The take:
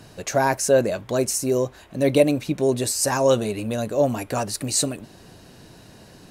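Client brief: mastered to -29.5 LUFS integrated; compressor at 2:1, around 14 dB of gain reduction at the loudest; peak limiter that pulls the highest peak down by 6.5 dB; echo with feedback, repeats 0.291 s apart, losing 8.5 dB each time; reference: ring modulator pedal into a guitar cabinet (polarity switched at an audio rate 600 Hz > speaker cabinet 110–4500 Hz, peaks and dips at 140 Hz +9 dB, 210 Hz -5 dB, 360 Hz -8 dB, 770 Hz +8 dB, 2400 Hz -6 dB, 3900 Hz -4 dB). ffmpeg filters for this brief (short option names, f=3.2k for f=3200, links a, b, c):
-af "acompressor=threshold=-38dB:ratio=2,alimiter=level_in=0.5dB:limit=-24dB:level=0:latency=1,volume=-0.5dB,aecho=1:1:291|582|873|1164:0.376|0.143|0.0543|0.0206,aeval=exprs='val(0)*sgn(sin(2*PI*600*n/s))':c=same,highpass=110,equalizer=f=140:t=q:w=4:g=9,equalizer=f=210:t=q:w=4:g=-5,equalizer=f=360:t=q:w=4:g=-8,equalizer=f=770:t=q:w=4:g=8,equalizer=f=2.4k:t=q:w=4:g=-6,equalizer=f=3.9k:t=q:w=4:g=-4,lowpass=f=4.5k:w=0.5412,lowpass=f=4.5k:w=1.3066,volume=5.5dB"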